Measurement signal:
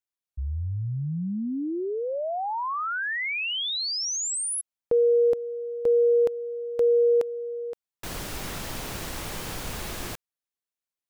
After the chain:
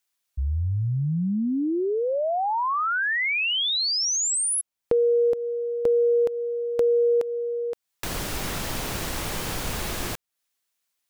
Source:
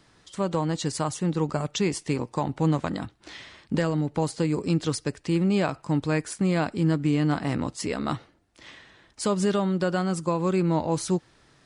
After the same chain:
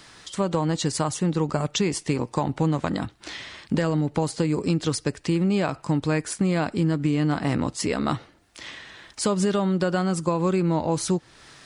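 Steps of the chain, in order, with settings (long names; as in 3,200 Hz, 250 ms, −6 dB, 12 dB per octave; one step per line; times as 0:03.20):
downward compressor, threshold −23 dBFS
one half of a high-frequency compander encoder only
level +4.5 dB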